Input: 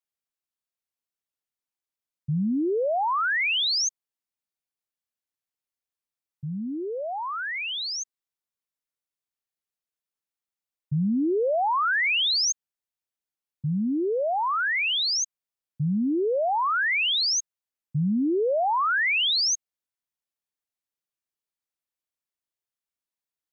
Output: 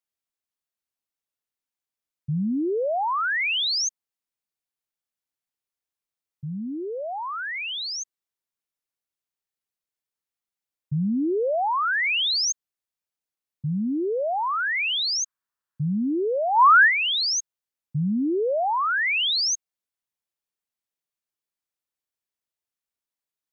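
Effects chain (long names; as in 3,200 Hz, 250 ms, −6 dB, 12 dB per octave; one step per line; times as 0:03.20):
0:14.79–0:17.12: flat-topped bell 1,300 Hz +10.5 dB 1.1 octaves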